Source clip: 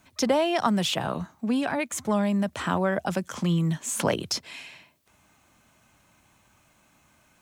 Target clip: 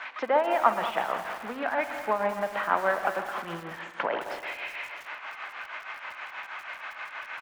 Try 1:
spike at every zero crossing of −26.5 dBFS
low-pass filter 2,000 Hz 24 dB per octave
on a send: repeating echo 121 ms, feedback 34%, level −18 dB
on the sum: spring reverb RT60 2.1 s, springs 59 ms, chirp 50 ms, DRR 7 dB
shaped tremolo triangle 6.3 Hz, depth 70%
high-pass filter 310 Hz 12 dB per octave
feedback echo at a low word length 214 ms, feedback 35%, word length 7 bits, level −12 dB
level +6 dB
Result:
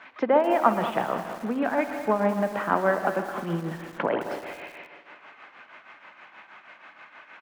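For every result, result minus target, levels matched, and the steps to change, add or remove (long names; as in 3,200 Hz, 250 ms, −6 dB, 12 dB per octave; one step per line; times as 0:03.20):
250 Hz band +7.0 dB; spike at every zero crossing: distortion −10 dB
change: high-pass filter 660 Hz 12 dB per octave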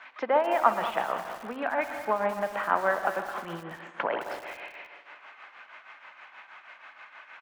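spike at every zero crossing: distortion −10 dB
change: spike at every zero crossing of −16.5 dBFS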